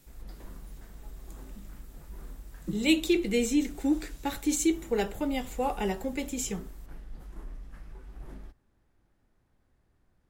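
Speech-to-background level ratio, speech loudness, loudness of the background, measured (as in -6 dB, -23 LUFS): 19.0 dB, -29.5 LUFS, -48.5 LUFS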